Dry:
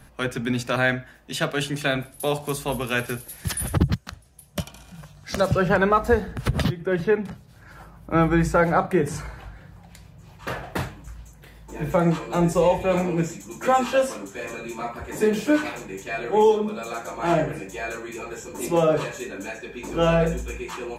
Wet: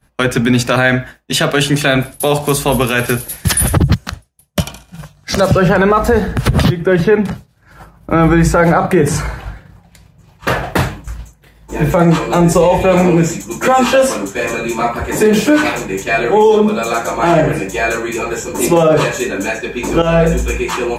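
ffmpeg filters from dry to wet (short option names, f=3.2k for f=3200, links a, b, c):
-filter_complex "[0:a]asplit=2[a][b];[a]atrim=end=20.02,asetpts=PTS-STARTPTS,afade=t=out:st=20.016:d=0.004:c=hsin:silence=0.211349[c];[b]atrim=start=20.02,asetpts=PTS-STARTPTS,afade=t=in:d=0.42:silence=0.211349[d];[c][d]concat=n=2:v=0:a=1,agate=range=-33dB:threshold=-36dB:ratio=3:detection=peak,alimiter=level_in=16dB:limit=-1dB:release=50:level=0:latency=1,volume=-1dB"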